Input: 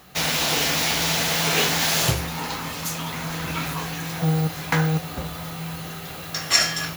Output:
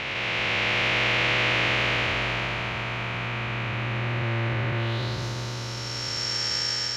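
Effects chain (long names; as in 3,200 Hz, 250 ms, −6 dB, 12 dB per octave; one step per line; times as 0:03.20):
spectrum smeared in time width 1,010 ms
phase-vocoder pitch shift with formants kept −5.5 semitones
low-pass filter sweep 2,500 Hz → 5,600 Hz, 0:04.74–0:05.25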